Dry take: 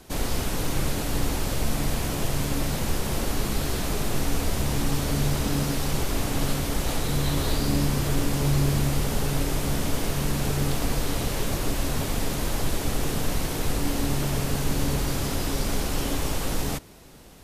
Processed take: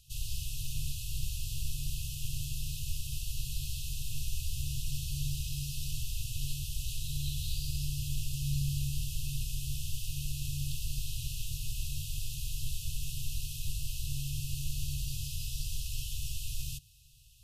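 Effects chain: FFT band-reject 140–2500 Hz; trim -8 dB

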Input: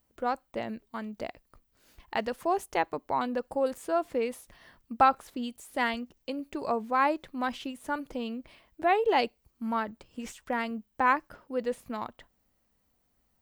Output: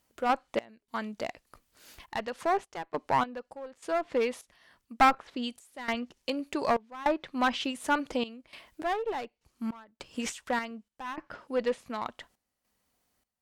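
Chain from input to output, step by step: tilt EQ +2 dB/octave; low-pass that closes with the level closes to 2.3 kHz, closed at -24.5 dBFS; treble shelf 7.8 kHz -5.5 dB; one-sided clip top -27.5 dBFS; random-step tremolo 3.4 Hz, depth 95%; trim +8 dB

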